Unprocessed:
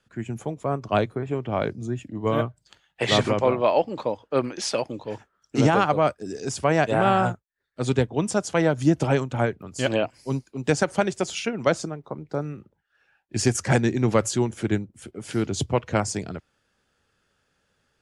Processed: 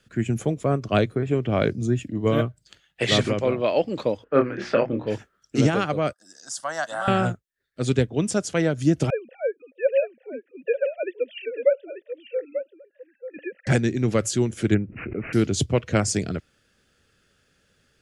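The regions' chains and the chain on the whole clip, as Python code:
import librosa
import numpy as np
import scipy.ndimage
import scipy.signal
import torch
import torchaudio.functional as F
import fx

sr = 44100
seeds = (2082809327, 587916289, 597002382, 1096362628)

y = fx.chain(x, sr, fx.lowpass_res(hz=1600.0, q=1.7),
    fx.hum_notches(base_hz=60, count=6),
    fx.doubler(ms=26.0, db=-5.5), at=(4.24, 5.07))
y = fx.chain(y, sr, fx.highpass(hz=700.0, slope=12),
    fx.fixed_phaser(hz=1000.0, stages=4), at=(6.13, 7.08))
y = fx.chain(y, sr, fx.sine_speech(),
    fx.vowel_filter(vowel='e'),
    fx.echo_single(ms=890, db=-9.5), at=(9.1, 13.67))
y = fx.chain(y, sr, fx.resample_bad(factor=8, down='none', up='filtered'),
    fx.pre_swell(db_per_s=54.0), at=(14.74, 15.33))
y = fx.peak_eq(y, sr, hz=910.0, db=-11.0, octaves=0.77)
y = fx.rider(y, sr, range_db=4, speed_s=0.5)
y = F.gain(torch.from_numpy(y), 3.5).numpy()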